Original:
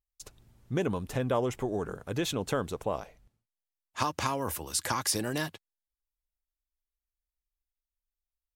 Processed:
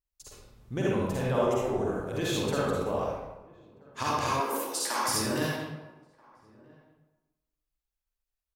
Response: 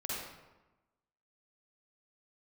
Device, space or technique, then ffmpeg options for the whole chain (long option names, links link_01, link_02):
bathroom: -filter_complex "[1:a]atrim=start_sample=2205[link_01];[0:a][link_01]afir=irnorm=-1:irlink=0,asettb=1/sr,asplit=3[link_02][link_03][link_04];[link_02]atrim=end=4.404[link_05];[link_03]atrim=start=4.4:end=5.08,asetpts=PTS-STARTPTS,afade=type=in:duration=0.004:curve=qsin,afade=type=out:start_time=0.676:duration=0.004:curve=qsin,highpass=frequency=270:width=0.5412,highpass=frequency=270:width=1.3066[link_06];[link_04]atrim=start=5.076[link_07];[link_05][link_06]acrossfade=duration=0.004:curve1=hsin:curve2=qsin[link_08];[link_08][link_07]acrossfade=duration=0.004:curve1=qsin:curve2=hsin,asplit=2[link_09][link_10];[link_10]adelay=1283,volume=-25dB,highshelf=frequency=4000:gain=-28.9[link_11];[link_09][link_11]amix=inputs=2:normalize=0"